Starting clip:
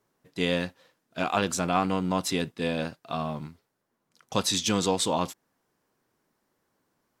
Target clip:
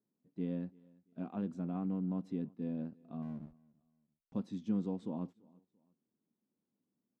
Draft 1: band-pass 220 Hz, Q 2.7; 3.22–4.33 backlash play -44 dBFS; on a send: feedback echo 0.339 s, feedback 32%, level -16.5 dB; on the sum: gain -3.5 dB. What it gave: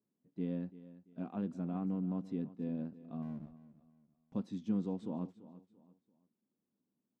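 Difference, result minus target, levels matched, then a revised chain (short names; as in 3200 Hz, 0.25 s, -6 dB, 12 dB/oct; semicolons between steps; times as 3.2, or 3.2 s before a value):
echo-to-direct +9 dB
band-pass 220 Hz, Q 2.7; 3.22–4.33 backlash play -44 dBFS; on a send: feedback echo 0.339 s, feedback 32%, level -25.5 dB; on the sum: gain -3.5 dB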